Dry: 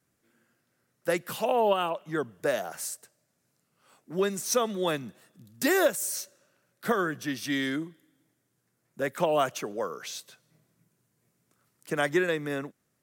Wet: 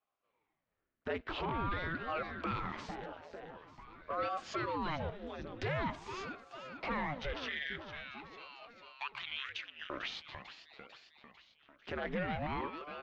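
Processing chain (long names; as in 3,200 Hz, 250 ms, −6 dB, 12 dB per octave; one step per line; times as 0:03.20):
0:07.33–0:09.90: elliptic high-pass filter 1,700 Hz, stop band 40 dB
leveller curve on the samples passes 2
noise gate −56 dBFS, range −10 dB
downward compressor 3 to 1, threshold −35 dBFS, peak gain reduction 13.5 dB
inverse Chebyshev low-pass filter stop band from 10,000 Hz, stop band 60 dB
repeating echo 447 ms, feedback 58%, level −13 dB
brickwall limiter −31.5 dBFS, peak gain reduction 9 dB
ring modulator whose carrier an LFO sweeps 510 Hz, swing 85%, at 0.46 Hz
level +4 dB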